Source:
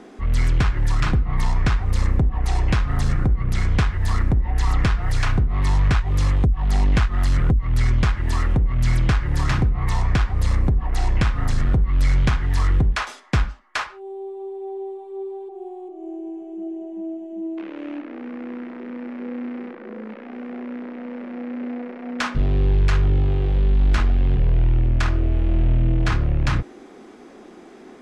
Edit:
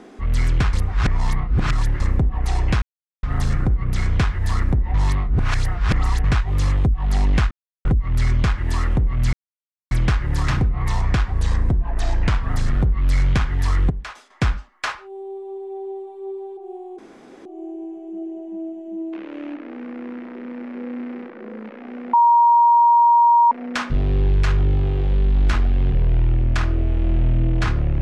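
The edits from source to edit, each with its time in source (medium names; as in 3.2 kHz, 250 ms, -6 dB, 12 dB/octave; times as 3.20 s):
0.73–2.00 s: reverse
2.82 s: insert silence 0.41 s
4.53–5.83 s: reverse
7.10–7.44 s: mute
8.92 s: insert silence 0.58 s
10.34–11.41 s: speed 92%
12.82–13.22 s: gain -10 dB
15.90 s: insert room tone 0.47 s
20.58–21.96 s: bleep 944 Hz -10 dBFS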